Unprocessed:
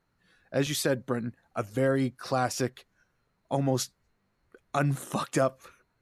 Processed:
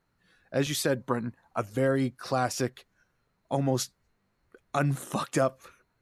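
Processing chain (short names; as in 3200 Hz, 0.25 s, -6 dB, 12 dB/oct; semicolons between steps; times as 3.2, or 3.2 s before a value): 1–1.6 bell 980 Hz +12 dB 0.42 oct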